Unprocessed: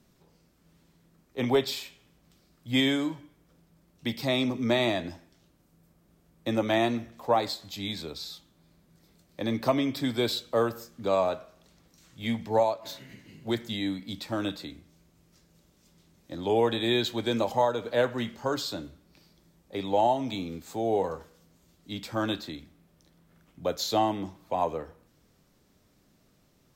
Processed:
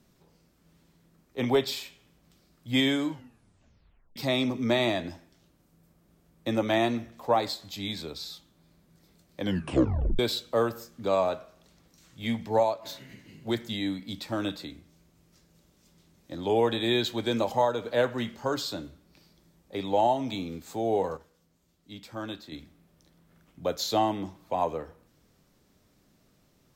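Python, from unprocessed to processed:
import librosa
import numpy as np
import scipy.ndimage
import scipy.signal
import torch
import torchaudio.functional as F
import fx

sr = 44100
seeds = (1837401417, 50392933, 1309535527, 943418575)

y = fx.edit(x, sr, fx.tape_stop(start_s=3.1, length_s=1.06),
    fx.tape_stop(start_s=9.4, length_s=0.79),
    fx.clip_gain(start_s=21.17, length_s=1.35, db=-7.5), tone=tone)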